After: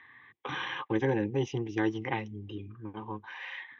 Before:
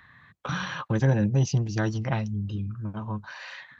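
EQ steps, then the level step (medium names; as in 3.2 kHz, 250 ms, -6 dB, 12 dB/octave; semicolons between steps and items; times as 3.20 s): cabinet simulation 270–4100 Hz, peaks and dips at 280 Hz -4 dB, 450 Hz -4 dB, 670 Hz -9 dB, 1 kHz -9 dB, 1.7 kHz -6 dB, 2.6 kHz -8 dB; static phaser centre 910 Hz, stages 8; +8.0 dB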